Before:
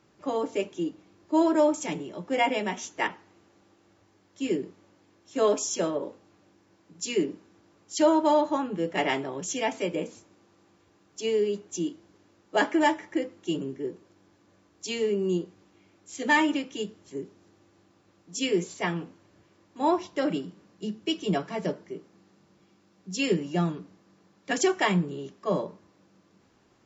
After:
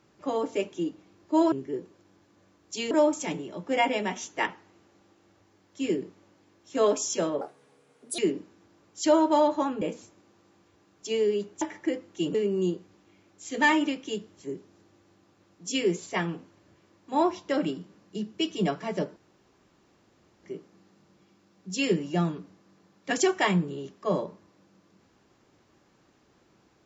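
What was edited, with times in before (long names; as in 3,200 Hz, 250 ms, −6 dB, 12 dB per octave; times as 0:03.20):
0:06.02–0:07.12: play speed 142%
0:08.75–0:09.95: remove
0:11.75–0:12.90: remove
0:13.63–0:15.02: move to 0:01.52
0:21.84: splice in room tone 1.27 s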